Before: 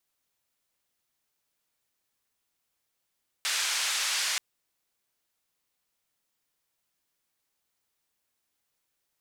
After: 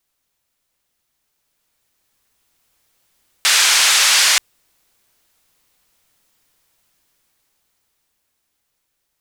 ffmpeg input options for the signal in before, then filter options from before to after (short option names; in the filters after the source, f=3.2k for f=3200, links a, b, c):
-f lavfi -i "anoisesrc=c=white:d=0.93:r=44100:seed=1,highpass=f=1300,lowpass=f=6600,volume=-18.2dB"
-af "dynaudnorm=f=260:g=17:m=10dB,lowshelf=f=72:g=8,acontrast=67"